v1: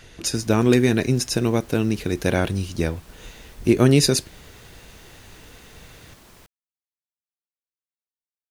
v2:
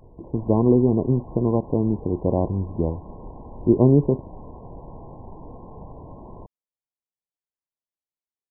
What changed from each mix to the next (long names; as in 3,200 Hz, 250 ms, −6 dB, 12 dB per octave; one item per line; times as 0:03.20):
background +11.5 dB
master: add linear-phase brick-wall low-pass 1,100 Hz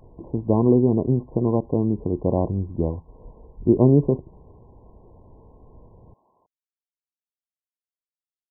background: add first difference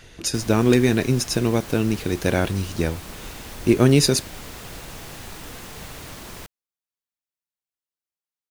background: remove first difference
master: remove linear-phase brick-wall low-pass 1,100 Hz